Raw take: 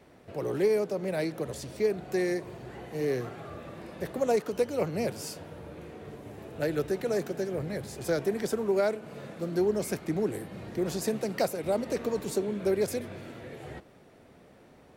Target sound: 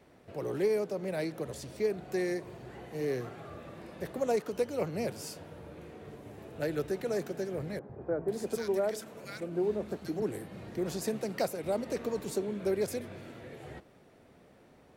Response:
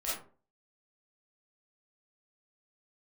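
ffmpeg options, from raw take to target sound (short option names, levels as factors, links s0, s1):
-filter_complex "[0:a]asettb=1/sr,asplit=3[s0][s1][s2];[s0]atrim=end=7.794[s3];[s1]atrim=start=7.79:end=10.22,asetpts=PTS-STARTPTS,afade=t=in:d=0.004:c=qsin,afade=t=out:st=2.426:d=0.004:c=qsin,acrossover=split=170|1400[s4][s5][s6];[s4]adelay=100[s7];[s6]adelay=490[s8];[s7][s5][s8]amix=inputs=3:normalize=0,atrim=end_sample=107163[s9];[s2]atrim=start=10.216[s10];[s3][s9]acrossfade=d=0.004:c1=hsin:c2=qsin[s11];[s11][s10]acrossfade=d=0.004:c1=qsin:c2=hsin,volume=0.668"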